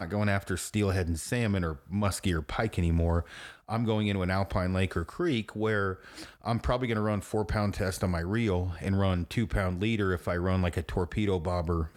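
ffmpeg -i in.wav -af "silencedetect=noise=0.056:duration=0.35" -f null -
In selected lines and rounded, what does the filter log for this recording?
silence_start: 3.20
silence_end: 3.71 | silence_duration: 0.51
silence_start: 5.92
silence_end: 6.47 | silence_duration: 0.55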